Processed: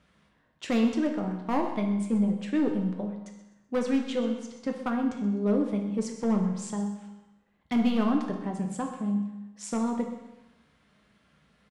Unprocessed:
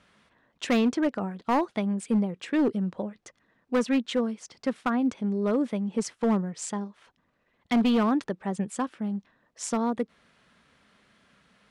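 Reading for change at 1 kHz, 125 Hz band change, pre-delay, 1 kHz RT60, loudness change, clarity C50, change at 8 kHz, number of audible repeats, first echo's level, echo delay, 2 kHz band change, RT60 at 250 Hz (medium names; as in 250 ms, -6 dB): -3.5 dB, +1.5 dB, 7 ms, 1.0 s, -1.0 dB, 5.5 dB, -4.5 dB, 1, -14.5 dB, 127 ms, -4.5 dB, 1.0 s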